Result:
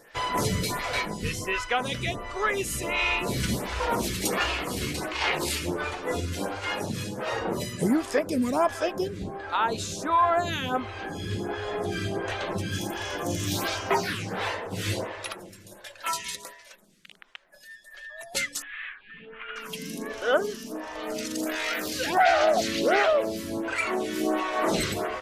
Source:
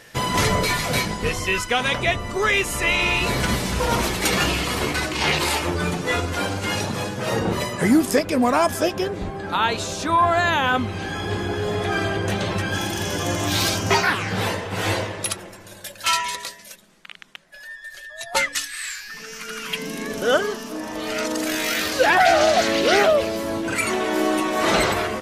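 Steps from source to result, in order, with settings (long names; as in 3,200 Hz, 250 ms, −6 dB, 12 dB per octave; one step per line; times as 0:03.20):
0:18.62–0:19.56: Butterworth low-pass 3,400 Hz 72 dB per octave
phaser with staggered stages 1.4 Hz
level −3 dB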